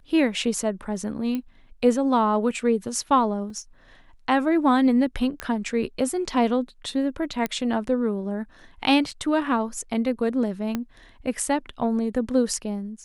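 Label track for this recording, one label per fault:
1.350000	1.350000	click −17 dBFS
3.500000	3.500000	drop-out 2.6 ms
5.400000	5.400000	click −14 dBFS
7.460000	7.460000	click −12 dBFS
9.110000	9.120000	drop-out 5 ms
10.750000	10.750000	click −13 dBFS

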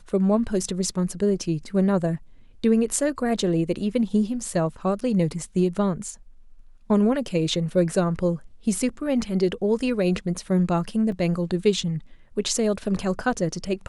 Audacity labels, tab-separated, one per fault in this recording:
11.120000	11.120000	drop-out 2.7 ms

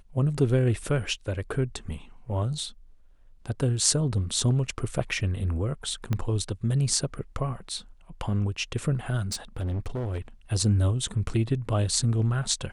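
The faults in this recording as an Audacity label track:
6.130000	6.130000	click −15 dBFS
9.320000	10.180000	clipping −26.5 dBFS

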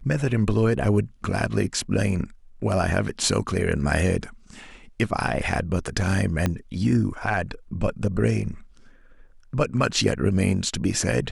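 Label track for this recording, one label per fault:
6.460000	6.460000	click −9 dBFS

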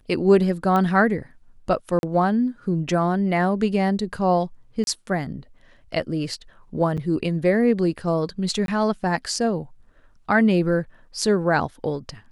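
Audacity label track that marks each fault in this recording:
0.760000	0.760000	click −12 dBFS
1.990000	2.030000	drop-out 41 ms
4.840000	4.870000	drop-out 31 ms
6.970000	6.980000	drop-out 6.9 ms
8.660000	8.680000	drop-out 22 ms

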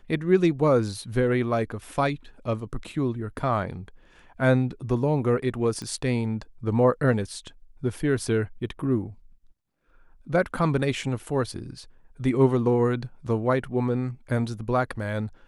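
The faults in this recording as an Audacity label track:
5.820000	5.820000	click −22 dBFS

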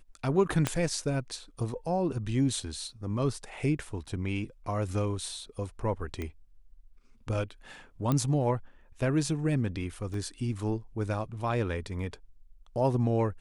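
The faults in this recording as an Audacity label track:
0.670000	0.670000	click −12 dBFS
6.220000	6.220000	click −22 dBFS
8.120000	8.120000	click −15 dBFS
10.140000	10.140000	drop-out 2.8 ms

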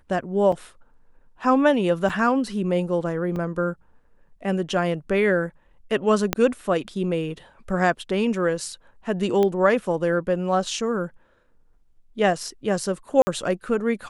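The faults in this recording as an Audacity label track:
0.520000	0.520000	drop-out 4 ms
2.090000	2.100000	drop-out 5.1 ms
3.360000	3.360000	drop-out 3.8 ms
6.330000	6.330000	click −5 dBFS
9.430000	9.430000	click −12 dBFS
13.220000	13.270000	drop-out 50 ms

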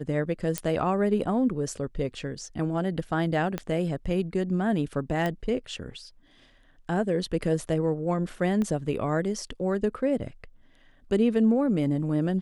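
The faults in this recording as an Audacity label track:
0.580000	0.580000	click −10 dBFS
3.580000	3.580000	click −16 dBFS
5.260000	5.260000	click −16 dBFS
8.620000	8.620000	click −19 dBFS

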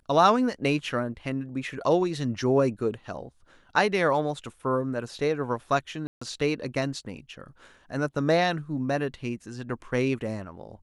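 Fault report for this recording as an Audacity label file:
6.070000	6.210000	drop-out 145 ms

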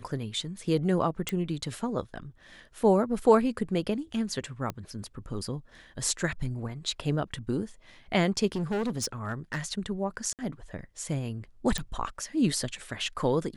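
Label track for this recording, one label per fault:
1.290000	1.290000	click −14 dBFS
4.700000	4.700000	click −19 dBFS
8.550000	9.590000	clipping −26 dBFS
10.330000	10.390000	drop-out 58 ms
11.780000	11.780000	click

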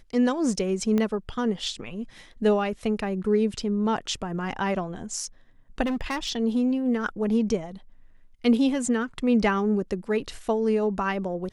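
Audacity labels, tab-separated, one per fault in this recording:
0.980000	0.980000	click −14 dBFS
5.850000	6.300000	clipping −24 dBFS

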